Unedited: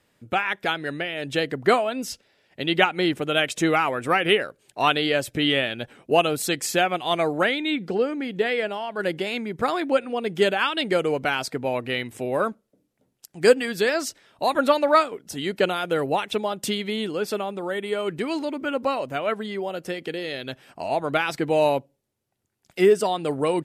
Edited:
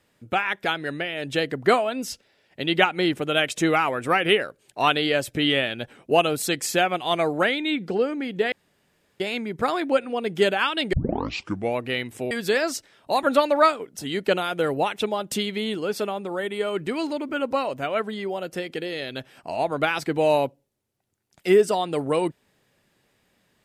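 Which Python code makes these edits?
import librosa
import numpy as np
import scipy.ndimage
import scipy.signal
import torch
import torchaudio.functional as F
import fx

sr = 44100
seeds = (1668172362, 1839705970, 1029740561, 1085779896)

y = fx.edit(x, sr, fx.room_tone_fill(start_s=8.52, length_s=0.68),
    fx.tape_start(start_s=10.93, length_s=0.83),
    fx.cut(start_s=12.31, length_s=1.32), tone=tone)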